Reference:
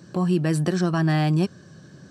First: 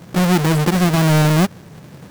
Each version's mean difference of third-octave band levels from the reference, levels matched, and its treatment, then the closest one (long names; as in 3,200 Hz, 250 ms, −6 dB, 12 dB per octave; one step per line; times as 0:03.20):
7.0 dB: each half-wave held at its own peak
level +2.5 dB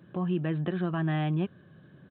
3.0 dB: downsampling to 8,000 Hz
level −7.5 dB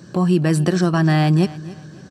1.5 dB: repeating echo 278 ms, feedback 32%, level −18 dB
level +5 dB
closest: third